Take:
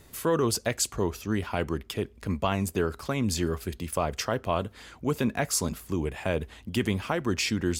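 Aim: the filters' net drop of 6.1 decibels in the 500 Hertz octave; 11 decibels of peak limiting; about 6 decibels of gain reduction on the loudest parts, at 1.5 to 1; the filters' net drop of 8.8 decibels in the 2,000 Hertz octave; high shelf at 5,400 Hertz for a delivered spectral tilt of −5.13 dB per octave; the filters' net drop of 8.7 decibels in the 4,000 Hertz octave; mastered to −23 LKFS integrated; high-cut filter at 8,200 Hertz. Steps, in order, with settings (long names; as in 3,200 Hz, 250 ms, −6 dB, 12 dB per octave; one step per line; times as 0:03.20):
low-pass filter 8,200 Hz
parametric band 500 Hz −7.5 dB
parametric band 2,000 Hz −9 dB
parametric band 4,000 Hz −6 dB
high-shelf EQ 5,400 Hz −5.5 dB
downward compressor 1.5 to 1, threshold −41 dBFS
level +20.5 dB
brickwall limiter −11.5 dBFS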